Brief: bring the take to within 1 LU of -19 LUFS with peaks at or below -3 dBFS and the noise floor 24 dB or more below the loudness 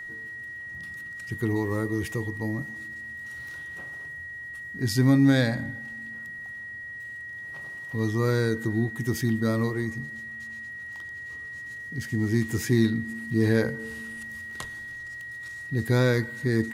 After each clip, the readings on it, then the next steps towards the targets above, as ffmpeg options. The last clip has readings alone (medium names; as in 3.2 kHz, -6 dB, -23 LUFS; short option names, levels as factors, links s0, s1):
steady tone 1.9 kHz; tone level -36 dBFS; loudness -28.5 LUFS; peak level -10.0 dBFS; loudness target -19.0 LUFS
-> -af "bandreject=f=1900:w=30"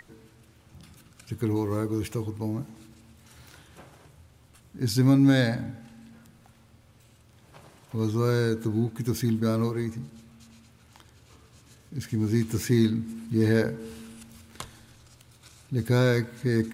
steady tone not found; loudness -26.0 LUFS; peak level -10.5 dBFS; loudness target -19.0 LUFS
-> -af "volume=2.24"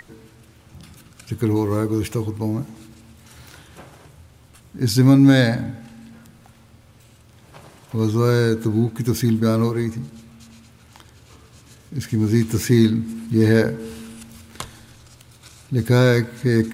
loudness -19.0 LUFS; peak level -3.5 dBFS; noise floor -50 dBFS